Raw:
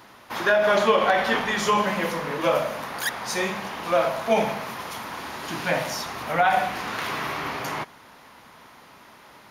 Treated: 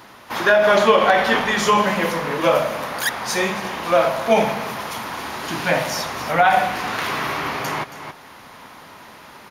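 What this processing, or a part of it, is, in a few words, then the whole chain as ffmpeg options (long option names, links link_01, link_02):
ducked delay: -filter_complex "[0:a]asplit=3[link_01][link_02][link_03];[link_02]adelay=274,volume=-2dB[link_04];[link_03]apad=whole_len=431300[link_05];[link_04][link_05]sidechaincompress=threshold=-40dB:ratio=8:attack=25:release=524[link_06];[link_01][link_06]amix=inputs=2:normalize=0,volume=5dB"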